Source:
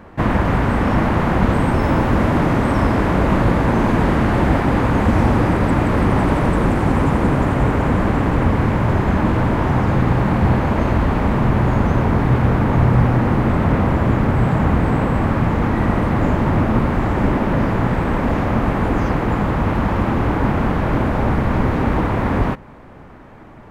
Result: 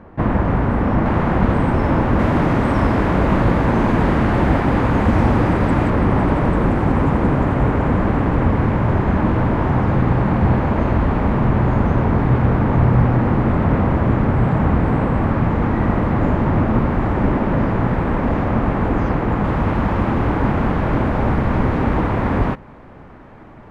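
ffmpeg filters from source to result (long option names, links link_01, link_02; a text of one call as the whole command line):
ffmpeg -i in.wav -af "asetnsamples=nb_out_samples=441:pad=0,asendcmd='1.06 lowpass f 2200;2.19 lowpass f 4500;5.9 lowpass f 2200;19.44 lowpass f 4000',lowpass=frequency=1200:poles=1" out.wav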